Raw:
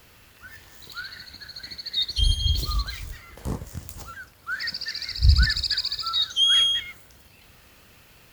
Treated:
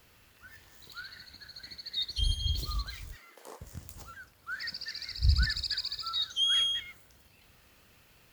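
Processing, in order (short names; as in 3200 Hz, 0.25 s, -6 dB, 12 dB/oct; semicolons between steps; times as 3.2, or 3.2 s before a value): 3.15–3.6 HPF 180 Hz -> 540 Hz 24 dB/oct; gain -8 dB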